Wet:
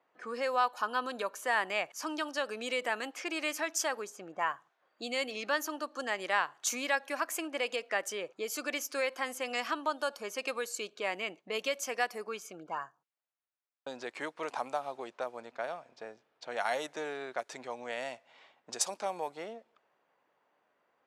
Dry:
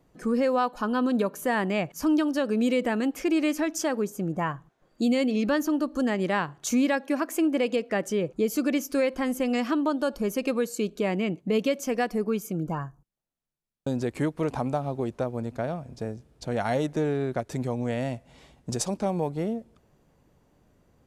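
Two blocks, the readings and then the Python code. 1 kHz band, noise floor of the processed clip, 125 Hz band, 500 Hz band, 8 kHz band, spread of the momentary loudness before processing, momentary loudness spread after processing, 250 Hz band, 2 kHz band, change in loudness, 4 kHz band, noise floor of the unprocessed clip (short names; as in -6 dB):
-2.5 dB, -77 dBFS, under -25 dB, -9.0 dB, -0.5 dB, 8 LU, 12 LU, -19.5 dB, 0.0 dB, -7.5 dB, 0.0 dB, -66 dBFS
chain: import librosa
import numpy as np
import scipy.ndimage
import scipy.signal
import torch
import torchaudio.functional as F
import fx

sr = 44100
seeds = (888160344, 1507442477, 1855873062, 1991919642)

y = scipy.signal.sosfilt(scipy.signal.butter(2, 840.0, 'highpass', fs=sr, output='sos'), x)
y = fx.env_lowpass(y, sr, base_hz=2400.0, full_db=-30.5)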